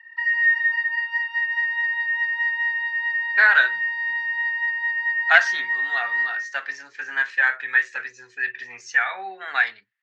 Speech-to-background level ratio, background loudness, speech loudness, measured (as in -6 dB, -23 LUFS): 0.5 dB, -22.0 LUFS, -21.5 LUFS